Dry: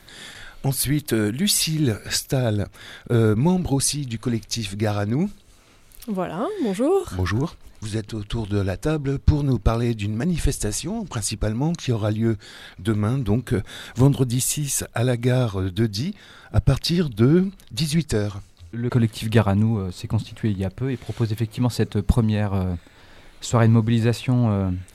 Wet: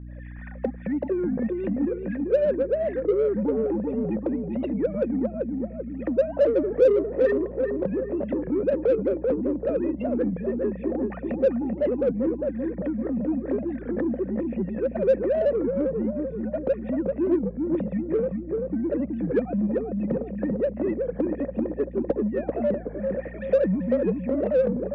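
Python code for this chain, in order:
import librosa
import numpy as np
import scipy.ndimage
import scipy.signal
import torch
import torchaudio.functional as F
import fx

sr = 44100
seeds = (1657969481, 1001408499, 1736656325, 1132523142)

p1 = fx.sine_speech(x, sr)
p2 = fx.recorder_agc(p1, sr, target_db=-12.0, rise_db_per_s=31.0, max_gain_db=30)
p3 = fx.formant_cascade(p2, sr, vowel='e')
p4 = fx.tilt_shelf(p3, sr, db=9.5, hz=1200.0)
p5 = fx.add_hum(p4, sr, base_hz=60, snr_db=14)
p6 = fx.air_absorb(p5, sr, metres=230.0)
p7 = fx.echo_filtered(p6, sr, ms=388, feedback_pct=53, hz=1100.0, wet_db=-3.5)
p8 = 10.0 ** (-24.0 / 20.0) * np.tanh(p7 / 10.0 ** (-24.0 / 20.0))
p9 = p7 + F.gain(torch.from_numpy(p8), -5.0).numpy()
p10 = fx.record_warp(p9, sr, rpm=33.33, depth_cents=160.0)
y = F.gain(torch.from_numpy(p10), -3.5).numpy()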